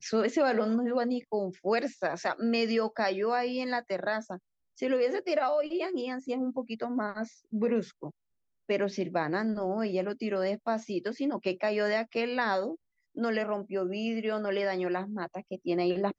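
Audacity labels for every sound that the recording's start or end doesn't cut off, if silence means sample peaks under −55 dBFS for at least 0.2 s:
4.770000	8.110000	sound
8.690000	12.760000	sound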